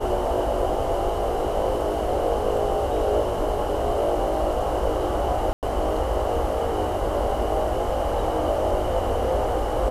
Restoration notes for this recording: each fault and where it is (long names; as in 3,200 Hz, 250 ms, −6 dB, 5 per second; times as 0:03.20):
0:05.53–0:05.63: drop-out 98 ms
0:07.36: drop-out 2.2 ms